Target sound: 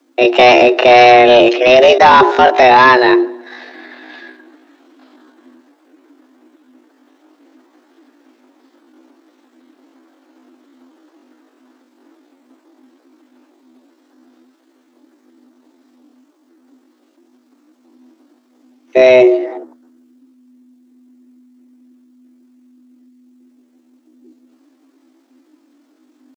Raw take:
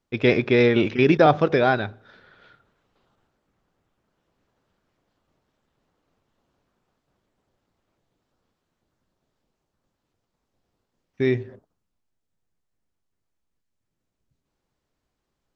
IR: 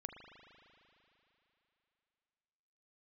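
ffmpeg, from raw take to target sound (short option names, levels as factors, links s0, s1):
-af "lowshelf=f=110:t=q:w=1.5:g=10.5,afreqshift=250,atempo=0.59,apsyclip=9.44,volume=0.841"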